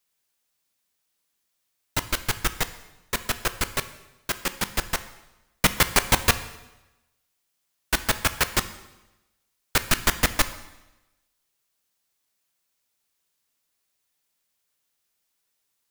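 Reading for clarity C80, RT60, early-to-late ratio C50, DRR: 16.0 dB, 1.0 s, 14.0 dB, 11.0 dB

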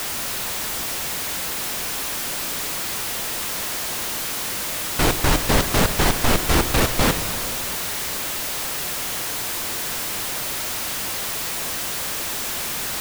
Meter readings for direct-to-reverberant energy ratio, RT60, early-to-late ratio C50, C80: 8.5 dB, 2.6 s, 9.5 dB, 10.0 dB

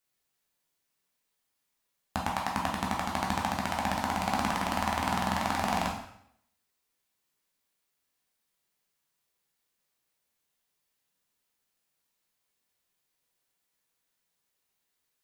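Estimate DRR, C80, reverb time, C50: -2.0 dB, 8.5 dB, 0.70 s, 5.0 dB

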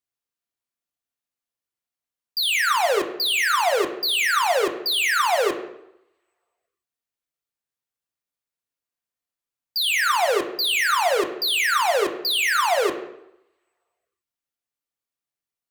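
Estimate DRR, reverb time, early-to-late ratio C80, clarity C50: 3.0 dB, 0.85 s, 12.5 dB, 9.5 dB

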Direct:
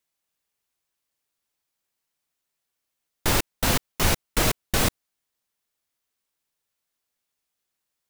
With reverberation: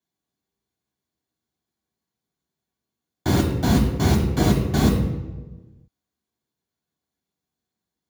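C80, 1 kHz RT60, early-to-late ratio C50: 6.0 dB, 1.1 s, 4.0 dB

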